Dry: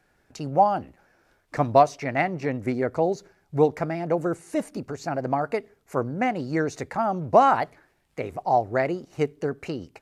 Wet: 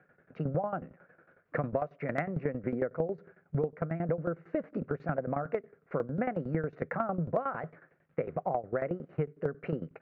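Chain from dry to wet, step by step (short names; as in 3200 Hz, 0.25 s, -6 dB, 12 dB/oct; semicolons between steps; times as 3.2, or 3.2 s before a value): speaker cabinet 130–2000 Hz, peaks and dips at 160 Hz +10 dB, 310 Hz -3 dB, 510 Hz +7 dB, 880 Hz -9 dB, 1400 Hz +5 dB; tremolo saw down 11 Hz, depth 85%; compressor 12:1, threshold -31 dBFS, peak gain reduction 18.5 dB; hard clip -17.5 dBFS, distortion -49 dB; gain +3.5 dB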